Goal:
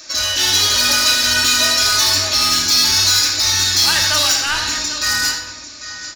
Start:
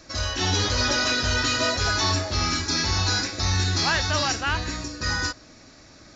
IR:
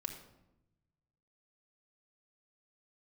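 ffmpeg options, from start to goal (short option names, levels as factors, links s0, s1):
-filter_complex "[0:a]aecho=1:1:85|796:0.316|0.178,asplit=2[s0][s1];[s1]highpass=f=720:p=1,volume=5.01,asoftclip=type=tanh:threshold=0.266[s2];[s0][s2]amix=inputs=2:normalize=0,lowpass=f=6300:p=1,volume=0.501,crystalizer=i=6.5:c=0[s3];[1:a]atrim=start_sample=2205[s4];[s3][s4]afir=irnorm=-1:irlink=0,volume=0.631"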